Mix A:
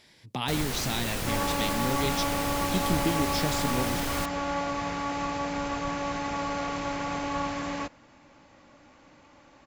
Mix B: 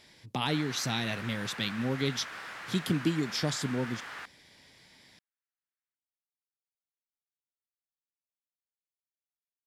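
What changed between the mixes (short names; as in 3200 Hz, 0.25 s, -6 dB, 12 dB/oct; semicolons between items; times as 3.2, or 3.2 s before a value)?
first sound: add band-pass 1600 Hz, Q 2.1; second sound: muted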